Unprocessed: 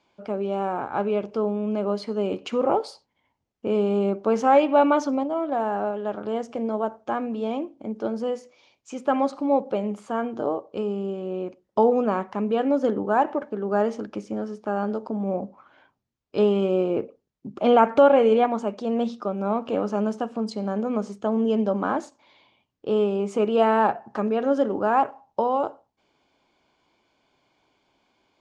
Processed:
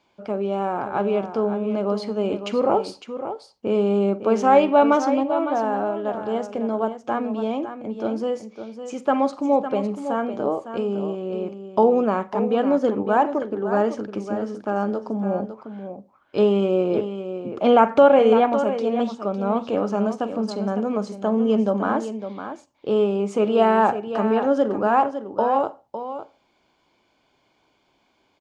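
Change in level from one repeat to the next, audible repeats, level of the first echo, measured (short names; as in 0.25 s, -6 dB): no steady repeat, 2, -18.5 dB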